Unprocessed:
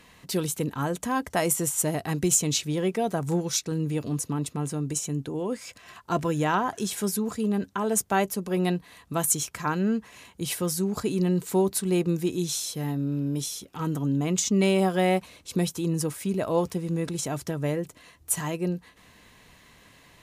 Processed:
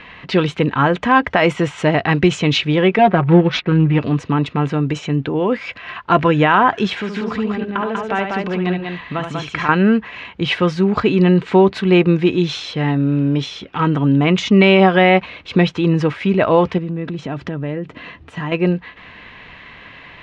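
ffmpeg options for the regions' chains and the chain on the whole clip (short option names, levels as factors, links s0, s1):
-filter_complex "[0:a]asettb=1/sr,asplit=3[s0][s1][s2];[s0]atrim=end=2.984[s3];[s1]atrim=start=2.98:end=3.99,asetpts=PTS-STARTPTS,afade=t=in:d=0.004:c=qsin,afade=t=out:st=1.006:d=0.004:c=qsin,lowpass=5200,aecho=1:1:5.5:0.75,atrim=end_sample=44541,adynamicsmooth=sensitivity=5.5:basefreq=1500[s4];[s2]atrim=start=3.986[s5];[s3][s4]acrossfade=d=0.004:c1=hsin:c2=qsin[s6];[s6][s5]acrossfade=d=0.004:c1=qsin:c2=hsin,asettb=1/sr,asplit=3[s7][s8][s9];[s7]atrim=end=6.954[s10];[s8]atrim=start=6.95:end=9.69,asetpts=PTS-STARTPTS,afade=t=in:d=0.004:c=qsin,afade=t=out:st=2.736:d=0.004:c=qsin,equalizer=f=11000:t=o:w=0.5:g=-7,acompressor=threshold=0.02:ratio=3:attack=3.2:release=140:knee=1:detection=peak,aecho=1:1:72|193:0.473|0.668,atrim=end_sample=120834[s11];[s9]atrim=start=9.686[s12];[s10][s11]acrossfade=d=0.004:c1=hsin:c2=qsin[s13];[s13][s12]acrossfade=d=0.004:c1=qsin:c2=hsin,asettb=1/sr,asplit=3[s14][s15][s16];[s14]atrim=end=16.784[s17];[s15]atrim=start=16.78:end=18.52,asetpts=PTS-STARTPTS,afade=t=in:d=0.004:c=qsin,afade=t=out:st=1.736:d=0.004:c=qsin,equalizer=f=220:w=0.63:g=9,acompressor=threshold=0.0141:ratio=3:attack=3.2:release=140:knee=1:detection=peak,bandreject=f=2200:w=21[s18];[s16]atrim=start=18.516[s19];[s17][s18]acrossfade=d=0.004:c1=hsin:c2=qsin[s20];[s20][s19]acrossfade=d=0.004:c1=qsin:c2=hsin,lowpass=f=2800:w=0.5412,lowpass=f=2800:w=1.3066,tiltshelf=f=1200:g=-5.5,alimiter=level_in=7.5:limit=0.891:release=50:level=0:latency=1,volume=0.891"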